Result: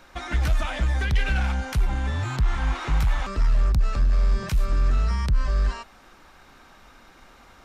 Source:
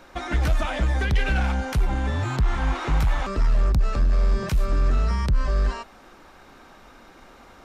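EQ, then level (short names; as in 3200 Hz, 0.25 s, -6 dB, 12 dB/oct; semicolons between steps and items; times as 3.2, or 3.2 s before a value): bell 400 Hz -6 dB 2.4 oct; 0.0 dB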